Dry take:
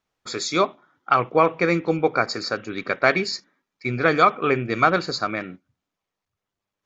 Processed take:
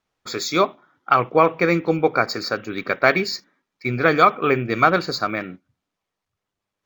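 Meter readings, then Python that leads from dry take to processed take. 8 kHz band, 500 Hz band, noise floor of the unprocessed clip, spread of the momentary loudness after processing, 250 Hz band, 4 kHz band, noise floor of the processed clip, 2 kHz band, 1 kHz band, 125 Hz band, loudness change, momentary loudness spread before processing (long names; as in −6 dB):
can't be measured, +2.0 dB, below −85 dBFS, 11 LU, +2.0 dB, +1.0 dB, −84 dBFS, +2.0 dB, +2.0 dB, +2.0 dB, +2.0 dB, 11 LU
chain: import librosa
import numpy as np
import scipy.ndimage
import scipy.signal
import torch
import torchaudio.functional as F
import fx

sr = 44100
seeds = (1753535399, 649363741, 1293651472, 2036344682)

y = np.interp(np.arange(len(x)), np.arange(len(x))[::2], x[::2])
y = F.gain(torch.from_numpy(y), 2.0).numpy()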